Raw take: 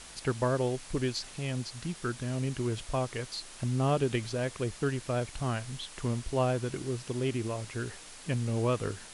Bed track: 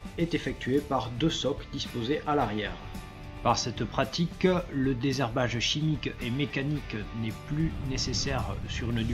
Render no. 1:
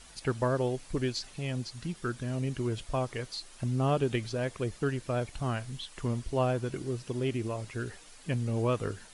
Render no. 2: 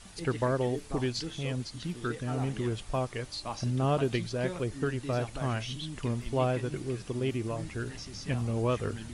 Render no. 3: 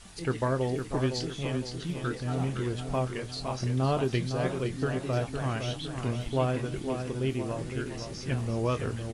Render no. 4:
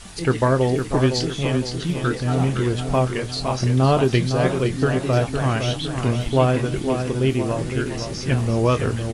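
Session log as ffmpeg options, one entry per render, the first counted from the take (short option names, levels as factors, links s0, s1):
-af "afftdn=nr=8:nf=-49"
-filter_complex "[1:a]volume=0.224[s0];[0:a][s0]amix=inputs=2:normalize=0"
-filter_complex "[0:a]asplit=2[s0][s1];[s1]adelay=23,volume=0.266[s2];[s0][s2]amix=inputs=2:normalize=0,asplit=2[s3][s4];[s4]adelay=510,lowpass=f=4400:p=1,volume=0.447,asplit=2[s5][s6];[s6]adelay=510,lowpass=f=4400:p=1,volume=0.48,asplit=2[s7][s8];[s8]adelay=510,lowpass=f=4400:p=1,volume=0.48,asplit=2[s9][s10];[s10]adelay=510,lowpass=f=4400:p=1,volume=0.48,asplit=2[s11][s12];[s12]adelay=510,lowpass=f=4400:p=1,volume=0.48,asplit=2[s13][s14];[s14]adelay=510,lowpass=f=4400:p=1,volume=0.48[s15];[s3][s5][s7][s9][s11][s13][s15]amix=inputs=7:normalize=0"
-af "volume=3.16"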